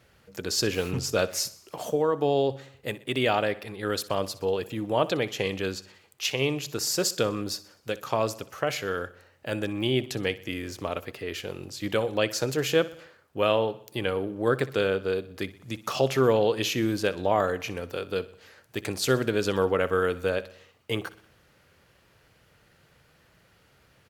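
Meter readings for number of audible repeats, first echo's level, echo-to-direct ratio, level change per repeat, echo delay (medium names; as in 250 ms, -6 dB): 4, -18.0 dB, -16.5 dB, -5.5 dB, 62 ms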